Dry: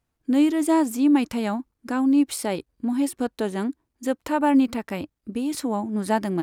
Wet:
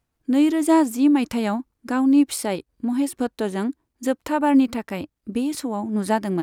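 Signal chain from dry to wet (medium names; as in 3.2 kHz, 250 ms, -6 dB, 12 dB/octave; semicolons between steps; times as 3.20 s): random flutter of the level, depth 55%; trim +4 dB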